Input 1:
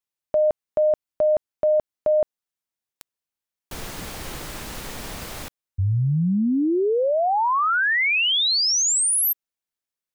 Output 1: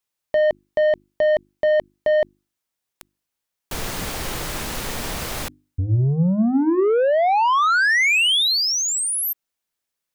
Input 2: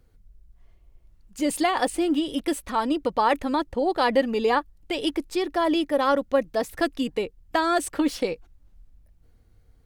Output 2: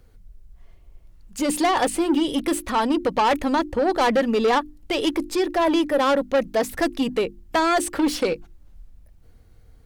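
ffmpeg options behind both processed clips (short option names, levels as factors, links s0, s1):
-filter_complex "[0:a]acrossover=split=3500[s0][s1];[s1]acompressor=threshold=0.0316:ratio=4:attack=1:release=60[s2];[s0][s2]amix=inputs=2:normalize=0,asoftclip=type=tanh:threshold=0.0841,bandreject=f=50:t=h:w=6,bandreject=f=100:t=h:w=6,bandreject=f=150:t=h:w=6,bandreject=f=200:t=h:w=6,bandreject=f=250:t=h:w=6,bandreject=f=300:t=h:w=6,bandreject=f=350:t=h:w=6,volume=2.24"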